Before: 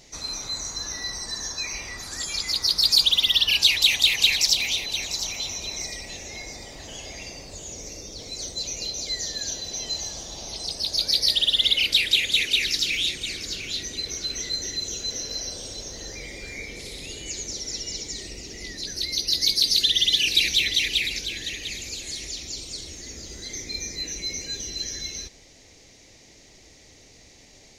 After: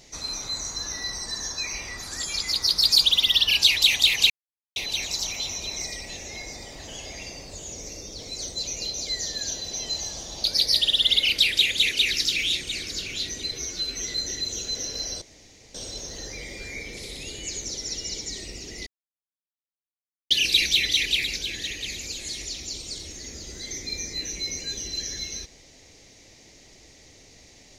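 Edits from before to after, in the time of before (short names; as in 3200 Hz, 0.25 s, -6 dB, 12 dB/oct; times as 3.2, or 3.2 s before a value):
4.3–4.76 mute
10.44–10.98 cut
14.06–14.43 stretch 1.5×
15.57 insert room tone 0.53 s
18.69–20.13 mute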